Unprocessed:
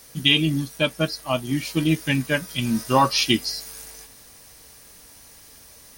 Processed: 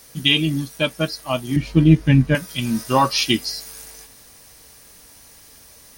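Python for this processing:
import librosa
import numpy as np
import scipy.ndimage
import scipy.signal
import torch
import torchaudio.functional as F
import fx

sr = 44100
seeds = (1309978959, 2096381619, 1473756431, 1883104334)

y = fx.riaa(x, sr, side='playback', at=(1.56, 2.35))
y = F.gain(torch.from_numpy(y), 1.0).numpy()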